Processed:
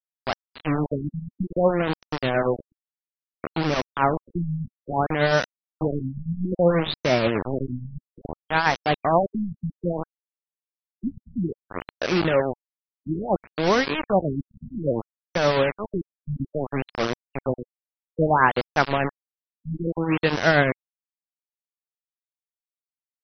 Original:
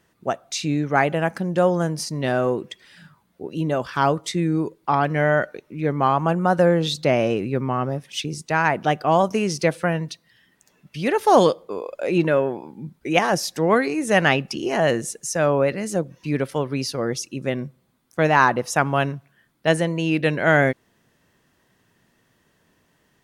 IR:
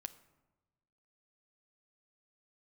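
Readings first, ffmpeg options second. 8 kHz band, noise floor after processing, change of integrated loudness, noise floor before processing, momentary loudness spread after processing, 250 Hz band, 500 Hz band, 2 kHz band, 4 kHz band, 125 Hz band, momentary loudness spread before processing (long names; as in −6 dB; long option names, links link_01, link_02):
−14.0 dB, below −85 dBFS, −3.0 dB, −65 dBFS, 13 LU, −3.0 dB, −3.5 dB, −3.0 dB, −2.5 dB, −3.0 dB, 11 LU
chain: -filter_complex "[0:a]tremolo=f=8.4:d=0.44,acrossover=split=5900[link_01][link_02];[link_02]acompressor=threshold=-50dB:ratio=4:attack=1:release=60[link_03];[link_01][link_03]amix=inputs=2:normalize=0,acrusher=bits=3:mix=0:aa=0.000001,afftfilt=real='re*lt(b*sr/1024,220*pow(6200/220,0.5+0.5*sin(2*PI*0.6*pts/sr)))':imag='im*lt(b*sr/1024,220*pow(6200/220,0.5+0.5*sin(2*PI*0.6*pts/sr)))':win_size=1024:overlap=0.75"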